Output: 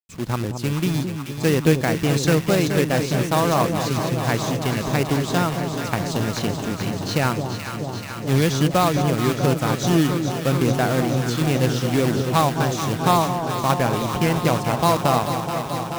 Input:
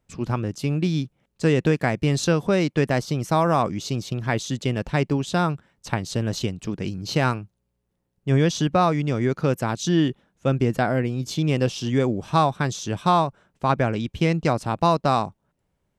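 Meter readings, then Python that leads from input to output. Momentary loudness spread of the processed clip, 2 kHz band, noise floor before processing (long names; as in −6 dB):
7 LU, +3.0 dB, −75 dBFS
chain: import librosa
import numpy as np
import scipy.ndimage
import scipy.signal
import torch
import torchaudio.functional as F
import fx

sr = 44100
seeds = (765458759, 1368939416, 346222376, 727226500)

y = fx.quant_companded(x, sr, bits=4)
y = fx.echo_alternate(y, sr, ms=216, hz=950.0, feedback_pct=89, wet_db=-6.5)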